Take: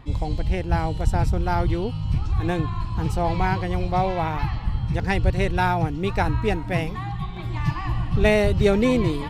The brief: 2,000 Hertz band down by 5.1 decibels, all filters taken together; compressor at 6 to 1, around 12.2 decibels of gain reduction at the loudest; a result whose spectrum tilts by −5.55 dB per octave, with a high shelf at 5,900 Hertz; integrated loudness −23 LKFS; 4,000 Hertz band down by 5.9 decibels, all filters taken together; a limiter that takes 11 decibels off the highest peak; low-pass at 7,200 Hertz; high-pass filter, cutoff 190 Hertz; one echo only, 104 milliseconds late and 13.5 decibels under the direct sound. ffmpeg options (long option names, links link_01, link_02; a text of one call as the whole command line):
ffmpeg -i in.wav -af "highpass=190,lowpass=7200,equalizer=frequency=2000:width_type=o:gain=-5,equalizer=frequency=4000:width_type=o:gain=-4,highshelf=frequency=5900:gain=-4.5,acompressor=threshold=-29dB:ratio=6,alimiter=level_in=5.5dB:limit=-24dB:level=0:latency=1,volume=-5.5dB,aecho=1:1:104:0.211,volume=15.5dB" out.wav